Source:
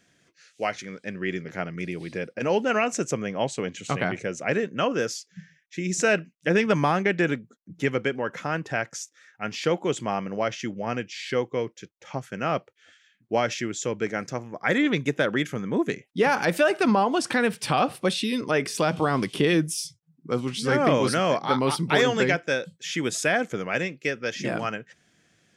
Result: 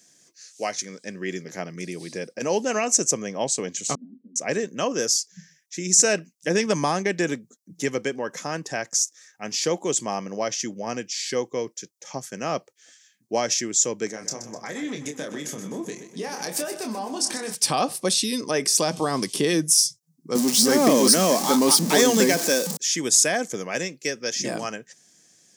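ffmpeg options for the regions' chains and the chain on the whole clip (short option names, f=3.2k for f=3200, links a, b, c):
-filter_complex "[0:a]asettb=1/sr,asplit=3[a][b][c];[a]atrim=end=3.954[d];[b]atrim=start=3.95:end=4.36,asetpts=PTS-STARTPTS,afade=t=in:d=0.004:c=qsin,afade=t=out:st=0.406:d=0.004:c=qsin,asoftclip=type=hard:threshold=-16dB,asuperpass=centerf=240:order=4:qfactor=6.1[e];[c]atrim=start=4.356[f];[d][e]acrossfade=d=0.004:c1=hsin:c2=qsin[g];[g][f]acrossfade=d=0.004:c1=qsin:c2=hsin,asettb=1/sr,asplit=3[h][i][j];[h]atrim=end=14.114[k];[i]atrim=start=14.11:end=17.55,asetpts=PTS-STARTPTS,afade=t=in:d=0.004:c=qsin,afade=t=out:st=3.436:d=0.004:c=qsin,acompressor=threshold=-30dB:ratio=4:attack=3.2:release=140:knee=1:detection=peak,asplit=2[l][m];[m]adelay=27,volume=-6dB[n];[l][n]amix=inputs=2:normalize=0,atrim=end_sample=151704,aecho=1:1:126|252|378|504|630|756:0.266|0.146|0.0805|0.0443|0.0243|0.0134,atrim=end_sample=151704[o];[j]atrim=start=17.546[p];[k][o]acrossfade=d=0.004:c1=hsin:c2=qsin[q];[q][p]acrossfade=d=0.004:c1=qsin:c2=hsin,asettb=1/sr,asplit=3[r][s][t];[r]atrim=end=20.354[u];[s]atrim=start=20.35:end=22.77,asetpts=PTS-STARTPTS,afade=t=in:d=0.004:c=qsin,afade=t=out:st=2.416:d=0.004:c=qsin,aeval=exprs='val(0)+0.5*0.0473*sgn(val(0))':c=same,lowshelf=f=140:t=q:w=3:g=-13.5[v];[t]atrim=start=22.766[w];[u][v]acrossfade=d=0.004:c1=hsin:c2=qsin[x];[x][w]acrossfade=d=0.004:c1=qsin:c2=hsin,highpass=170,highshelf=f=4.1k:t=q:w=1.5:g=12,bandreject=f=1.4k:w=7.1"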